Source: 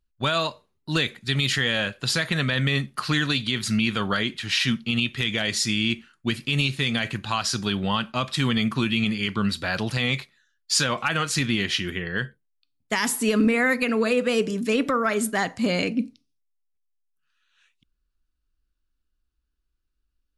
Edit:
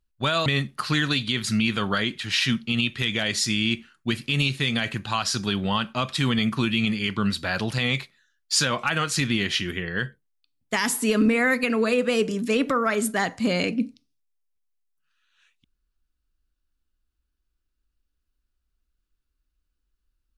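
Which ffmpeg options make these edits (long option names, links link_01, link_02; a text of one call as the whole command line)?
ffmpeg -i in.wav -filter_complex "[0:a]asplit=2[link_01][link_02];[link_01]atrim=end=0.462[link_03];[link_02]atrim=start=2.648[link_04];[link_03][link_04]acrossfade=duration=0.004:curve1=hsin:curve2=hsin" out.wav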